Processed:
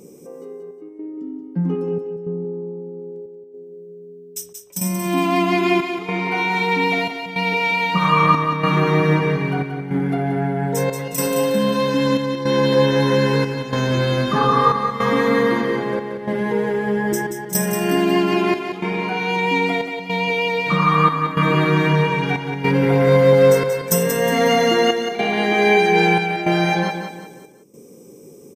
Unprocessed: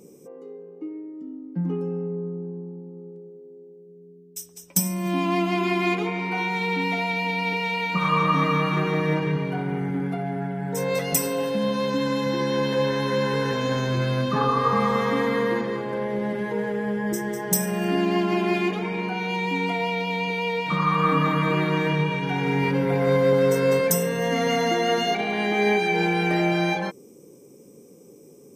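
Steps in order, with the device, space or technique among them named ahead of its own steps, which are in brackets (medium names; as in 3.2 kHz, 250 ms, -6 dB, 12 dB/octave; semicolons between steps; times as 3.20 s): trance gate with a delay (trance gate "xxxxx..xx" 106 bpm -12 dB; feedback delay 181 ms, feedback 38%, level -7.5 dB); trim +5.5 dB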